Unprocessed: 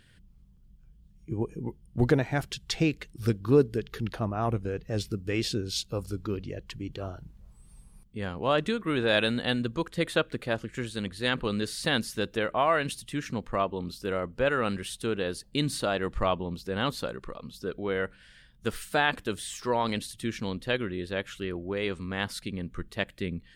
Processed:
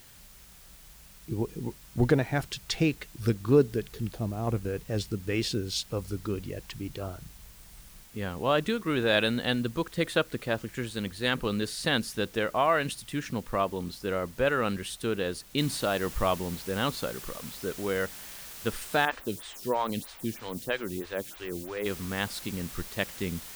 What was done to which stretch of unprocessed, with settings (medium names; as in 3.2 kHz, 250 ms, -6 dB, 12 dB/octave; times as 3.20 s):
3.89–4.47 s: peaking EQ 1.5 kHz -13.5 dB 1.9 oct
15.58 s: noise floor step -54 dB -44 dB
19.05–21.86 s: lamp-driven phase shifter 3.1 Hz